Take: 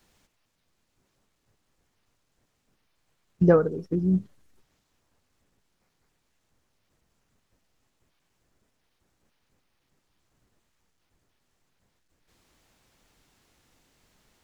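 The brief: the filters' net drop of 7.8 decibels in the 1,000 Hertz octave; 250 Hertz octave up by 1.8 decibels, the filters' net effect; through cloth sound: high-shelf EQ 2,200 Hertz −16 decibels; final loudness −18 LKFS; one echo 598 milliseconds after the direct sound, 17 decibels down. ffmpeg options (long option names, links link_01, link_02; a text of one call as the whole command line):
ffmpeg -i in.wav -af "equalizer=frequency=250:width_type=o:gain=4,equalizer=frequency=1000:width_type=o:gain=-7.5,highshelf=frequency=2200:gain=-16,aecho=1:1:598:0.141,volume=5dB" out.wav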